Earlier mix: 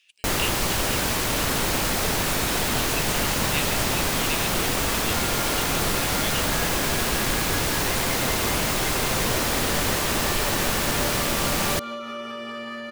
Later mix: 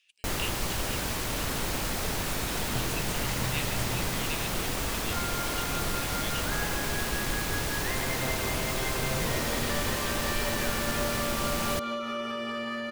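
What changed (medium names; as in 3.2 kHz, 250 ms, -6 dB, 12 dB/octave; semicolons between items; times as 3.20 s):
speech -6.5 dB; first sound -8.0 dB; master: add bass shelf 120 Hz +5 dB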